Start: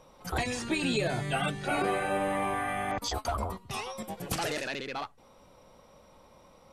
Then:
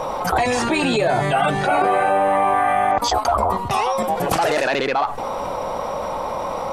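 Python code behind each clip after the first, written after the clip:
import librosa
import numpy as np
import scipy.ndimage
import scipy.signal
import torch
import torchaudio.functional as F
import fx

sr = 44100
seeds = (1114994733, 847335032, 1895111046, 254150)

y = fx.peak_eq(x, sr, hz=820.0, db=13.5, octaves=1.9)
y = fx.env_flatten(y, sr, amount_pct=70)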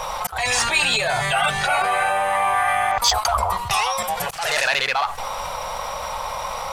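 y = fx.tone_stack(x, sr, knobs='10-0-10')
y = fx.auto_swell(y, sr, attack_ms=220.0)
y = fx.leveller(y, sr, passes=1)
y = y * 10.0 ** (5.0 / 20.0)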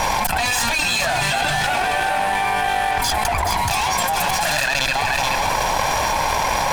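y = fx.lower_of_two(x, sr, delay_ms=1.2)
y = y + 10.0 ** (-9.0 / 20.0) * np.pad(y, (int(427 * sr / 1000.0), 0))[:len(y)]
y = fx.env_flatten(y, sr, amount_pct=100)
y = y * 10.0 ** (-3.5 / 20.0)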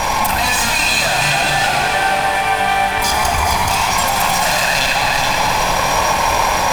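y = fx.rev_schroeder(x, sr, rt60_s=3.5, comb_ms=28, drr_db=1.0)
y = y * 10.0 ** (2.0 / 20.0)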